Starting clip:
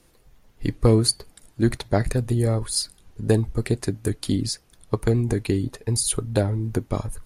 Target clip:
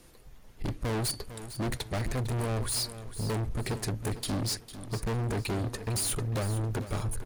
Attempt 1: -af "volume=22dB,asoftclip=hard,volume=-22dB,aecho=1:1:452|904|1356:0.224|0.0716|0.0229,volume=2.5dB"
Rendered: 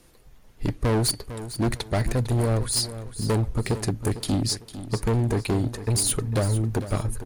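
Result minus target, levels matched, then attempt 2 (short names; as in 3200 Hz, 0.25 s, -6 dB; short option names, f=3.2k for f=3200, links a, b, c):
overloaded stage: distortion -5 dB
-af "volume=31.5dB,asoftclip=hard,volume=-31.5dB,aecho=1:1:452|904|1356:0.224|0.0716|0.0229,volume=2.5dB"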